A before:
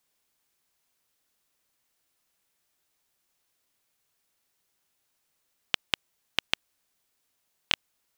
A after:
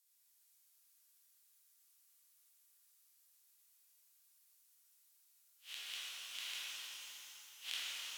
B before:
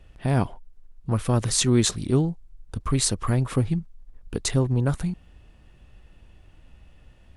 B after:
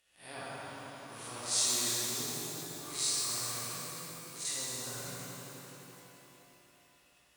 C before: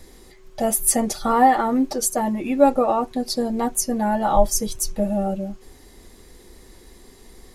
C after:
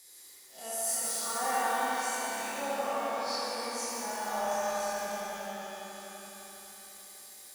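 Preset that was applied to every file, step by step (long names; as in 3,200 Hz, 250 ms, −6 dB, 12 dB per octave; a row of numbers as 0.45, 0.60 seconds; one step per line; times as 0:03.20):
spectrum smeared in time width 116 ms
on a send: bucket-brigade delay 84 ms, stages 1,024, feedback 82%, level −4 dB
on the sum: treble cut that deepens with the level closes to 2,700 Hz, closed at −15 dBFS
first difference
reverb with rising layers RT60 3.4 s, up +12 semitones, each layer −8 dB, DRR −5.5 dB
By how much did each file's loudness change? −13.0, −10.0, −12.0 LU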